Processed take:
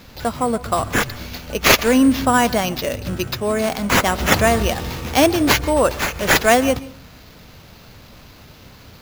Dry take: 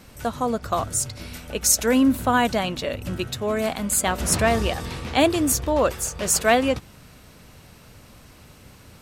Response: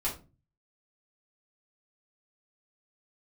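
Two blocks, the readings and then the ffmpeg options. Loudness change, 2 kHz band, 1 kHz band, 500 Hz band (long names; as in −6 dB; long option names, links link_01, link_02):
+4.5 dB, +8.5 dB, +5.0 dB, +4.5 dB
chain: -filter_complex "[0:a]highshelf=frequency=12000:gain=9.5,acrusher=samples=5:mix=1:aa=0.000001,asplit=2[link_01][link_02];[1:a]atrim=start_sample=2205,adelay=125[link_03];[link_02][link_03]afir=irnorm=-1:irlink=0,volume=-24dB[link_04];[link_01][link_04]amix=inputs=2:normalize=0,volume=4dB"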